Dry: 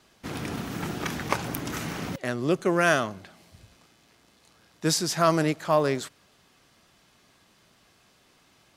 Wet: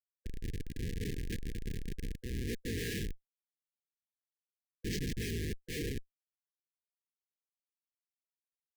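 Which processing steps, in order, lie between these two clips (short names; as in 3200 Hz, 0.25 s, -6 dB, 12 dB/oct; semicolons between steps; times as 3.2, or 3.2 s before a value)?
cycle switcher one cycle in 3, inverted; high shelf 3300 Hz -3.5 dB; painted sound fall, 0.65–1.28, 320–640 Hz -37 dBFS; careless resampling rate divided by 4×, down none, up hold; Schmitt trigger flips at -26.5 dBFS; limiter -34.5 dBFS, peak gain reduction 10.5 dB; brick-wall FIR band-stop 500–1600 Hz; gain +1.5 dB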